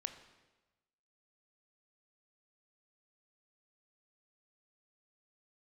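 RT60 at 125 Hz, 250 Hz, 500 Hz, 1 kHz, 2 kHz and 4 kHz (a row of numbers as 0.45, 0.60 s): 1.3, 1.1, 1.2, 1.1, 1.1, 1.0 s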